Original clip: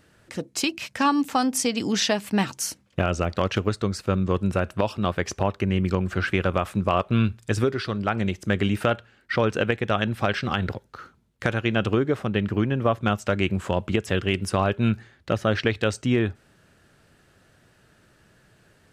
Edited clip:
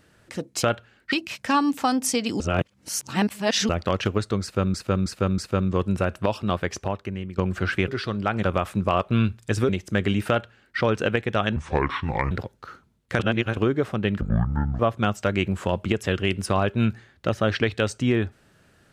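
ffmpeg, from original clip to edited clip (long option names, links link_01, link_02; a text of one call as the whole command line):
ffmpeg -i in.wav -filter_complex "[0:a]asplit=18[link_01][link_02][link_03][link_04][link_05][link_06][link_07][link_08][link_09][link_10][link_11][link_12][link_13][link_14][link_15][link_16][link_17][link_18];[link_01]atrim=end=0.632[link_19];[link_02]atrim=start=8.838:end=9.332[link_20];[link_03]atrim=start=0.628:end=1.912[link_21];[link_04]atrim=start=1.908:end=3.202,asetpts=PTS-STARTPTS,areverse[link_22];[link_05]atrim=start=3.198:end=4.252[link_23];[link_06]atrim=start=3.928:end=4.252[link_24];[link_07]atrim=start=3.928:end=4.252[link_25];[link_08]atrim=start=3.928:end=5.93,asetpts=PTS-STARTPTS,afade=type=out:start_time=1.162:duration=0.84:silence=0.177828[link_26];[link_09]atrim=start=5.93:end=6.432,asetpts=PTS-STARTPTS,afade=type=in:duration=0.004:curve=hsin:silence=0.177828[link_27];[link_10]atrim=start=7.688:end=8.242[link_28];[link_11]atrim=start=6.428:end=7.692[link_29];[link_12]atrim=start=8.238:end=10.114[link_30];[link_13]atrim=start=10.11:end=10.62,asetpts=PTS-STARTPTS,asetrate=29988,aresample=44100[link_31];[link_14]atrim=start=10.616:end=11.502[link_32];[link_15]atrim=start=11.498:end=11.882,asetpts=PTS-STARTPTS,areverse[link_33];[link_16]atrim=start=11.878:end=12.524[link_34];[link_17]atrim=start=12.52:end=12.83,asetpts=PTS-STARTPTS,asetrate=23373,aresample=44100,atrim=end_sample=25794,asetpts=PTS-STARTPTS[link_35];[link_18]atrim=start=12.826[link_36];[link_19][link_20]acrossfade=duration=0.004:curve1=hsin:curve2=hsin[link_37];[link_37][link_21]acrossfade=duration=0.004:curve1=hsin:curve2=hsin[link_38];[link_38][link_22]acrossfade=duration=0.004:curve1=hsin:curve2=hsin[link_39];[link_39][link_23]acrossfade=duration=0.004:curve1=hsin:curve2=hsin[link_40];[link_40][link_24]acrossfade=duration=0.004:curve1=hsin:curve2=hsin[link_41];[link_41][link_25]acrossfade=duration=0.004:curve1=hsin:curve2=hsin[link_42];[link_26][link_27]concat=n=2:v=0:a=1[link_43];[link_42][link_43]acrossfade=duration=0.004:curve1=hsin:curve2=hsin[link_44];[link_44][link_28]acrossfade=duration=0.004:curve1=hsin:curve2=hsin[link_45];[link_45][link_29]acrossfade=duration=0.004:curve1=hsin:curve2=hsin[link_46];[link_46][link_30]acrossfade=duration=0.004:curve1=hsin:curve2=hsin[link_47];[link_47][link_31]acrossfade=duration=0.004:curve1=hsin:curve2=hsin[link_48];[link_48][link_32]acrossfade=duration=0.004:curve1=hsin:curve2=hsin[link_49];[link_49][link_33]acrossfade=duration=0.004:curve1=hsin:curve2=hsin[link_50];[link_50][link_34]acrossfade=duration=0.004:curve1=hsin:curve2=hsin[link_51];[link_51][link_35]acrossfade=duration=0.004:curve1=hsin:curve2=hsin[link_52];[link_52][link_36]acrossfade=duration=0.004:curve1=hsin:curve2=hsin" out.wav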